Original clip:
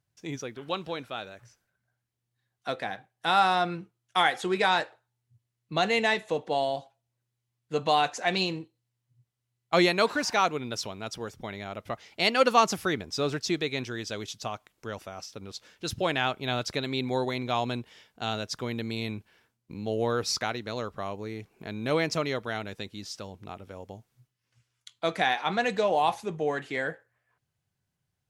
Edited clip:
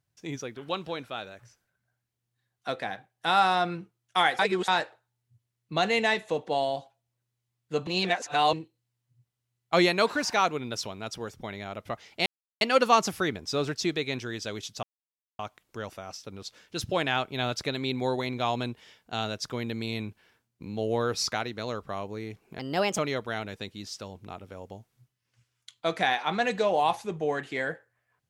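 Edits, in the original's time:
0:04.39–0:04.68: reverse
0:07.87–0:08.53: reverse
0:12.26: splice in silence 0.35 s
0:14.48: splice in silence 0.56 s
0:21.68–0:22.17: play speed 125%

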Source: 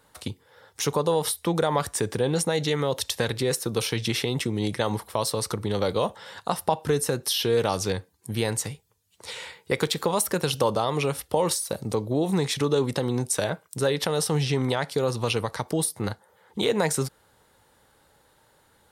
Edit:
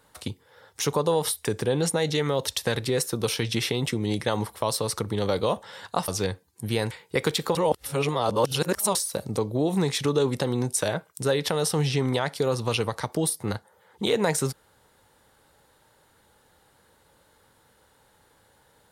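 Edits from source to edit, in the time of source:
0:01.45–0:01.98: remove
0:06.61–0:07.74: remove
0:08.57–0:09.47: remove
0:10.11–0:11.51: reverse

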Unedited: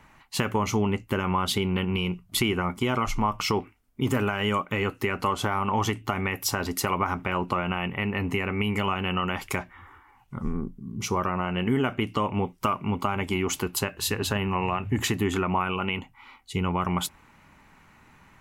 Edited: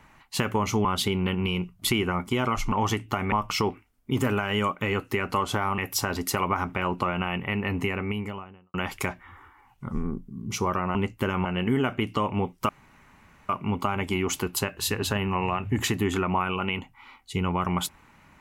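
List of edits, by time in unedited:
0:00.85–0:01.35: move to 0:11.45
0:05.68–0:06.28: move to 0:03.22
0:08.30–0:09.24: fade out and dull
0:12.69: splice in room tone 0.80 s

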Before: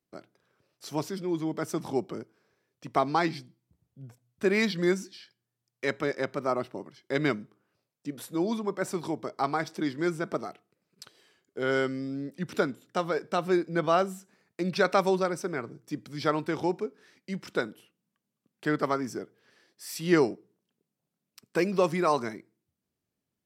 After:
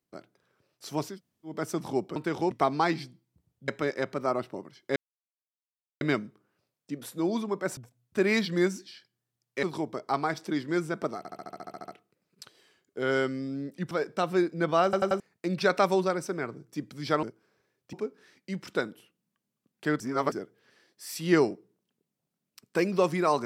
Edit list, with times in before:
0:01.13–0:01.51: fill with room tone, crossfade 0.16 s
0:02.16–0:02.86: swap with 0:16.38–0:16.73
0:04.03–0:05.89: move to 0:08.93
0:07.17: splice in silence 1.05 s
0:10.48: stutter 0.07 s, 11 plays
0:12.51–0:13.06: remove
0:13.99: stutter in place 0.09 s, 4 plays
0:18.80–0:19.12: reverse

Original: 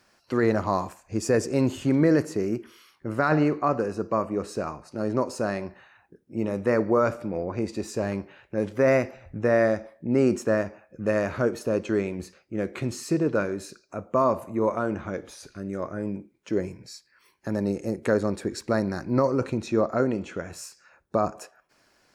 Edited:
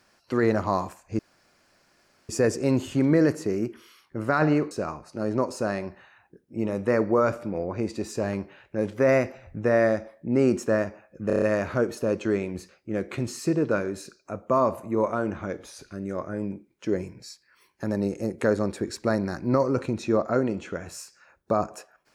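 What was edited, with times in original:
0:01.19: splice in room tone 1.10 s
0:03.61–0:04.50: remove
0:11.06: stutter 0.03 s, 6 plays

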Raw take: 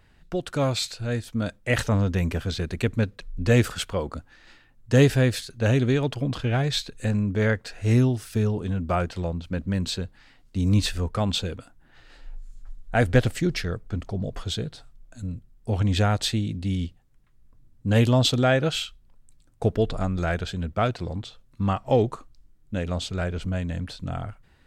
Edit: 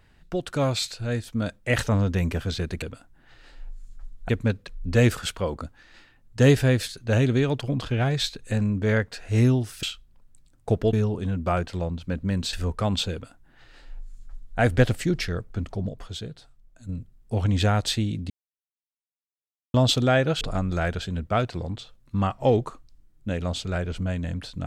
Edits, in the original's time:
0:09.96–0:10.89: remove
0:11.48–0:12.95: duplicate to 0:02.82
0:14.25–0:15.25: clip gain −6 dB
0:16.66–0:18.10: silence
0:18.77–0:19.87: move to 0:08.36

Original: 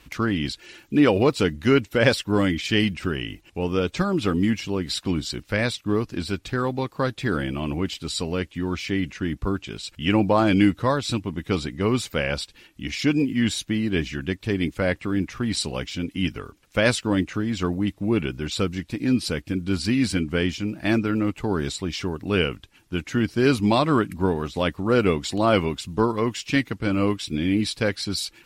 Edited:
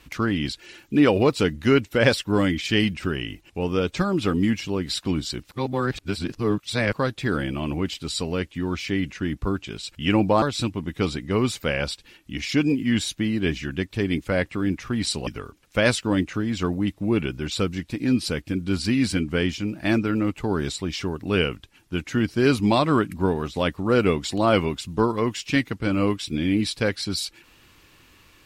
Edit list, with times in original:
0:05.51–0:06.93: reverse
0:10.42–0:10.92: remove
0:15.77–0:16.27: remove

